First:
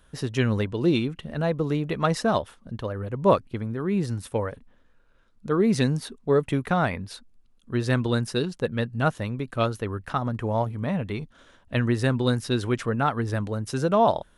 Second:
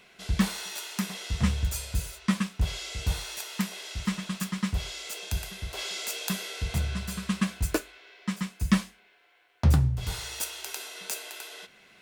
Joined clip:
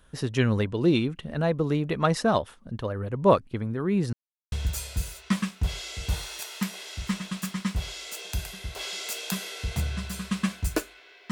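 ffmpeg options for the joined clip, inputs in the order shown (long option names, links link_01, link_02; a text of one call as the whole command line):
ffmpeg -i cue0.wav -i cue1.wav -filter_complex "[0:a]apad=whole_dur=11.31,atrim=end=11.31,asplit=2[link_01][link_02];[link_01]atrim=end=4.13,asetpts=PTS-STARTPTS,afade=type=out:start_time=4.126:duration=0.004:curve=hsin[link_03];[link_02]atrim=start=4.13:end=4.52,asetpts=PTS-STARTPTS,volume=0[link_04];[1:a]atrim=start=1.5:end=8.29,asetpts=PTS-STARTPTS,afade=type=in:duration=0.004:curve=hsin[link_05];[link_03][link_04][link_05]concat=n=3:v=0:a=1" out.wav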